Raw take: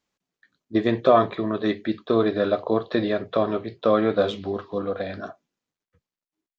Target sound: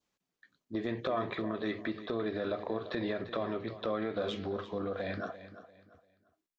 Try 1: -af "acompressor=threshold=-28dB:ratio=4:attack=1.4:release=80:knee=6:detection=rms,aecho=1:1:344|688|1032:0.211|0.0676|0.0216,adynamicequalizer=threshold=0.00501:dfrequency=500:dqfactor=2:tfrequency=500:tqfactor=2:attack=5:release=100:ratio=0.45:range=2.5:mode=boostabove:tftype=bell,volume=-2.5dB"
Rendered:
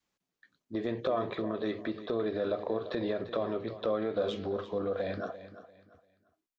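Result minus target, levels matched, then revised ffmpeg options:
2,000 Hz band −5.0 dB
-af "acompressor=threshold=-28dB:ratio=4:attack=1.4:release=80:knee=6:detection=rms,aecho=1:1:344|688|1032:0.211|0.0676|0.0216,adynamicequalizer=threshold=0.00501:dfrequency=2000:dqfactor=2:tfrequency=2000:tqfactor=2:attack=5:release=100:ratio=0.45:range=2.5:mode=boostabove:tftype=bell,volume=-2.5dB"

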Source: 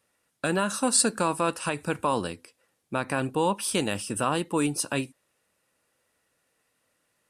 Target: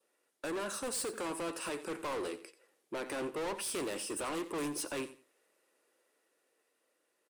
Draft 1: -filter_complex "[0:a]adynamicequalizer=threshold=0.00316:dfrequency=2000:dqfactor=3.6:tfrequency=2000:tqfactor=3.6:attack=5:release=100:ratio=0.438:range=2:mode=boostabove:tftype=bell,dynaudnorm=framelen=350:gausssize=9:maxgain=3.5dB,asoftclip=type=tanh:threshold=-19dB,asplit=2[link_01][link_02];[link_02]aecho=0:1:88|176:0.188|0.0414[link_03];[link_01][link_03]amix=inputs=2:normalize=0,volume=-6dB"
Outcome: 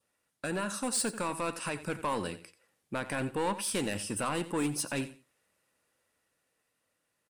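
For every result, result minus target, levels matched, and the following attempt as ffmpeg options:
soft clipping: distortion −7 dB; 500 Hz band −2.5 dB
-filter_complex "[0:a]adynamicequalizer=threshold=0.00316:dfrequency=2000:dqfactor=3.6:tfrequency=2000:tqfactor=3.6:attack=5:release=100:ratio=0.438:range=2:mode=boostabove:tftype=bell,dynaudnorm=framelen=350:gausssize=9:maxgain=3.5dB,asoftclip=type=tanh:threshold=-28.5dB,asplit=2[link_01][link_02];[link_02]aecho=0:1:88|176:0.188|0.0414[link_03];[link_01][link_03]amix=inputs=2:normalize=0,volume=-6dB"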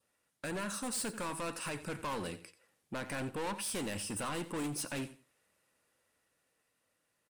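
500 Hz band −3.5 dB
-filter_complex "[0:a]adynamicequalizer=threshold=0.00316:dfrequency=2000:dqfactor=3.6:tfrequency=2000:tqfactor=3.6:attack=5:release=100:ratio=0.438:range=2:mode=boostabove:tftype=bell,highpass=frequency=370:width_type=q:width=2.6,dynaudnorm=framelen=350:gausssize=9:maxgain=3.5dB,asoftclip=type=tanh:threshold=-28.5dB,asplit=2[link_01][link_02];[link_02]aecho=0:1:88|176:0.188|0.0414[link_03];[link_01][link_03]amix=inputs=2:normalize=0,volume=-6dB"

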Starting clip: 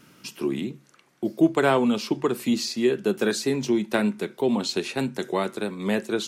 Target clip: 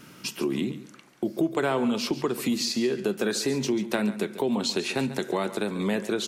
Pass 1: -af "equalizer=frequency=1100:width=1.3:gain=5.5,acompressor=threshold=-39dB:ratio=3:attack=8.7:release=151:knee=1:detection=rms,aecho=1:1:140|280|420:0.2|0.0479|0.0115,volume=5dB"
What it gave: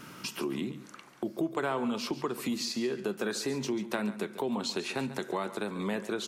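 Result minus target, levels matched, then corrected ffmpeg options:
downward compressor: peak gain reduction +6.5 dB; 1,000 Hz band +3.0 dB
-af "acompressor=threshold=-29.5dB:ratio=3:attack=8.7:release=151:knee=1:detection=rms,aecho=1:1:140|280|420:0.2|0.0479|0.0115,volume=5dB"

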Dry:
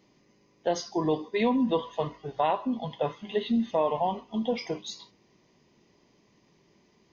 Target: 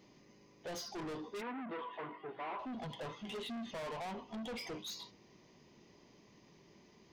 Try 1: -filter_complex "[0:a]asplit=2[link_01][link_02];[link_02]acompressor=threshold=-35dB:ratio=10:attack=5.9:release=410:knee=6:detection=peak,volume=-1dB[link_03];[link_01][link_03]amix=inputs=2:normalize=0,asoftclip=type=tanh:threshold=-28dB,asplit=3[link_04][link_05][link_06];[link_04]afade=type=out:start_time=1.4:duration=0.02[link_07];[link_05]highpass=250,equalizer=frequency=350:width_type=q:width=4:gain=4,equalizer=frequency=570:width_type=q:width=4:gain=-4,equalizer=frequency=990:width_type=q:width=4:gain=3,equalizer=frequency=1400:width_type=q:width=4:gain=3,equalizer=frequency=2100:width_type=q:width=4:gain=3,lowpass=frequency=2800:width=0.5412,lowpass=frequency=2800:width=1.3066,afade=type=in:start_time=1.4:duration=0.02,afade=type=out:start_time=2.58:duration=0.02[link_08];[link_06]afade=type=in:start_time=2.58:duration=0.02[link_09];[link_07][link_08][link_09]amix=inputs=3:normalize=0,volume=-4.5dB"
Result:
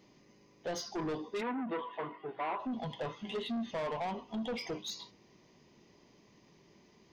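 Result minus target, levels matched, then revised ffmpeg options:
soft clipping: distortion −4 dB
-filter_complex "[0:a]asplit=2[link_01][link_02];[link_02]acompressor=threshold=-35dB:ratio=10:attack=5.9:release=410:knee=6:detection=peak,volume=-1dB[link_03];[link_01][link_03]amix=inputs=2:normalize=0,asoftclip=type=tanh:threshold=-36dB,asplit=3[link_04][link_05][link_06];[link_04]afade=type=out:start_time=1.4:duration=0.02[link_07];[link_05]highpass=250,equalizer=frequency=350:width_type=q:width=4:gain=4,equalizer=frequency=570:width_type=q:width=4:gain=-4,equalizer=frequency=990:width_type=q:width=4:gain=3,equalizer=frequency=1400:width_type=q:width=4:gain=3,equalizer=frequency=2100:width_type=q:width=4:gain=3,lowpass=frequency=2800:width=0.5412,lowpass=frequency=2800:width=1.3066,afade=type=in:start_time=1.4:duration=0.02,afade=type=out:start_time=2.58:duration=0.02[link_08];[link_06]afade=type=in:start_time=2.58:duration=0.02[link_09];[link_07][link_08][link_09]amix=inputs=3:normalize=0,volume=-4.5dB"

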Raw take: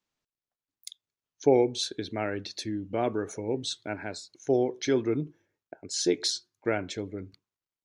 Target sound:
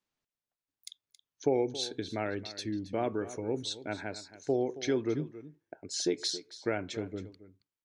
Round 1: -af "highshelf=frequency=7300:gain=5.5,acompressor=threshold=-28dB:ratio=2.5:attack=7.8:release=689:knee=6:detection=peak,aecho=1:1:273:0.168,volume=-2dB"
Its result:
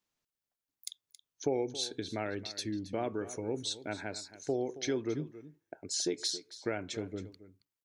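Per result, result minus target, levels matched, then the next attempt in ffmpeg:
8,000 Hz band +4.5 dB; downward compressor: peak gain reduction +4 dB
-af "highshelf=frequency=7300:gain=-5.5,acompressor=threshold=-28dB:ratio=2.5:attack=7.8:release=689:knee=6:detection=peak,aecho=1:1:273:0.168,volume=-2dB"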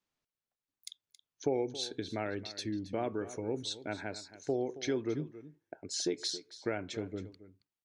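downward compressor: peak gain reduction +4 dB
-af "highshelf=frequency=7300:gain=-5.5,acompressor=threshold=-21.5dB:ratio=2.5:attack=7.8:release=689:knee=6:detection=peak,aecho=1:1:273:0.168,volume=-2dB"

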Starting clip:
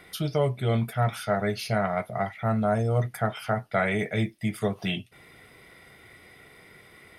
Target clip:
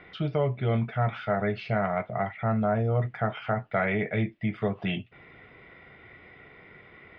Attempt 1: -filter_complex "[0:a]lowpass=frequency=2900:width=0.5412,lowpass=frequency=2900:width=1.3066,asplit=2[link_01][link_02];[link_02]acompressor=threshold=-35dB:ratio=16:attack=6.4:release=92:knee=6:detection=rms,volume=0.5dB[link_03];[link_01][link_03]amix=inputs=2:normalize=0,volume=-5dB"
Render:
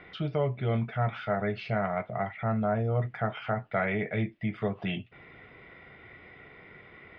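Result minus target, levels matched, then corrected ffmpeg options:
downward compressor: peak gain reduction +9.5 dB
-filter_complex "[0:a]lowpass=frequency=2900:width=0.5412,lowpass=frequency=2900:width=1.3066,asplit=2[link_01][link_02];[link_02]acompressor=threshold=-25dB:ratio=16:attack=6.4:release=92:knee=6:detection=rms,volume=0.5dB[link_03];[link_01][link_03]amix=inputs=2:normalize=0,volume=-5dB"

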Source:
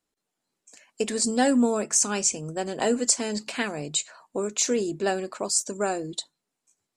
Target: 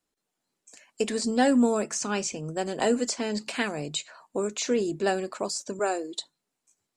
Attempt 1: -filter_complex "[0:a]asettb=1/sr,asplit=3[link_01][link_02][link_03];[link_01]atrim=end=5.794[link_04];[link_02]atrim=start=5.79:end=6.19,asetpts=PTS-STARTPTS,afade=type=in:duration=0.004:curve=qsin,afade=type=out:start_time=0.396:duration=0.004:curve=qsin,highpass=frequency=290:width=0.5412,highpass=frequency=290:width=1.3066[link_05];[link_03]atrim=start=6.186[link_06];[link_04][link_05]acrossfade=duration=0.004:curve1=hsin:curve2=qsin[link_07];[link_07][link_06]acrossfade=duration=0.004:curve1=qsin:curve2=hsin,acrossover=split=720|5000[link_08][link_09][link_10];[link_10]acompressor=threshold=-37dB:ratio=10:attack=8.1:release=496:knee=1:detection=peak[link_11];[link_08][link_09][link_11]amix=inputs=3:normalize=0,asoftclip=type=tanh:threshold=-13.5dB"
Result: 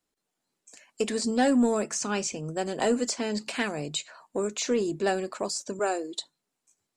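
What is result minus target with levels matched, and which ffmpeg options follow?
soft clipping: distortion +20 dB
-filter_complex "[0:a]asettb=1/sr,asplit=3[link_01][link_02][link_03];[link_01]atrim=end=5.794[link_04];[link_02]atrim=start=5.79:end=6.19,asetpts=PTS-STARTPTS,afade=type=in:duration=0.004:curve=qsin,afade=type=out:start_time=0.396:duration=0.004:curve=qsin,highpass=frequency=290:width=0.5412,highpass=frequency=290:width=1.3066[link_05];[link_03]atrim=start=6.186[link_06];[link_04][link_05]acrossfade=duration=0.004:curve1=hsin:curve2=qsin[link_07];[link_07][link_06]acrossfade=duration=0.004:curve1=qsin:curve2=hsin,acrossover=split=720|5000[link_08][link_09][link_10];[link_10]acompressor=threshold=-37dB:ratio=10:attack=8.1:release=496:knee=1:detection=peak[link_11];[link_08][link_09][link_11]amix=inputs=3:normalize=0,asoftclip=type=tanh:threshold=-2.5dB"

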